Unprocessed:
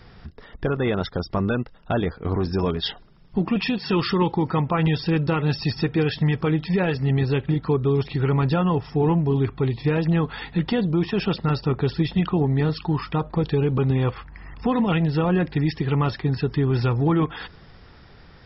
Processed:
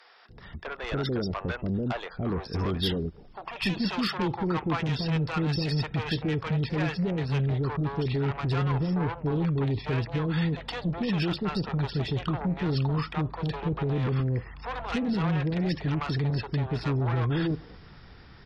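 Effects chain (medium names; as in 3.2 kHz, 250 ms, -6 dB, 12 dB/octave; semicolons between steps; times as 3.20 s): Chebyshev shaper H 5 -12 dB, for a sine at -10.5 dBFS; bands offset in time highs, lows 290 ms, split 540 Hz; trim -8.5 dB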